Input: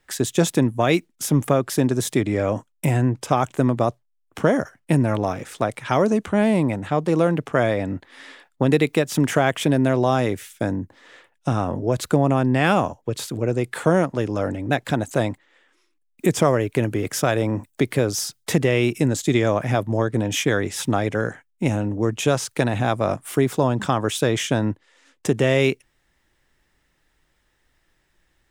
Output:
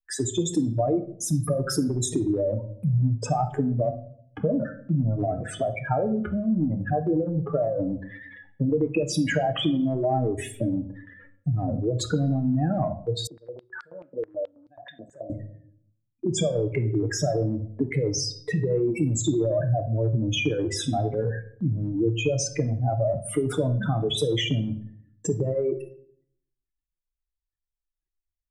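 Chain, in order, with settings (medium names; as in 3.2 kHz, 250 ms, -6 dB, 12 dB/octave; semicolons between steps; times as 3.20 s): spectral contrast enhancement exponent 3.9; gate with hold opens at -43 dBFS; transient shaper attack +1 dB, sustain +6 dB; compression, threshold -19 dBFS, peak gain reduction 7 dB; reverberation RT60 0.60 s, pre-delay 3 ms, DRR 5.5 dB; 13.27–15.30 s: step-sequenced band-pass 9.3 Hz 470–4700 Hz; trim -2.5 dB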